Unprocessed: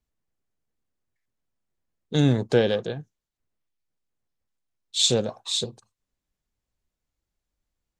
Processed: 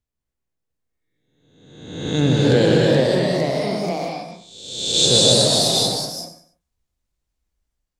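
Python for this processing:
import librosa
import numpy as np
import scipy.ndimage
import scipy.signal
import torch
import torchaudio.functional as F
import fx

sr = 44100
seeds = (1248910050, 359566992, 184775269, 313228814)

p1 = fx.spec_swells(x, sr, rise_s=1.04)
p2 = fx.noise_reduce_blind(p1, sr, reduce_db=7)
p3 = p2 + fx.echo_feedback(p2, sr, ms=134, feedback_pct=33, wet_db=-12.0, dry=0)
p4 = fx.rev_gated(p3, sr, seeds[0], gate_ms=290, shape='rising', drr_db=-1.0)
y = fx.echo_pitch(p4, sr, ms=701, semitones=2, count=3, db_per_echo=-3.0)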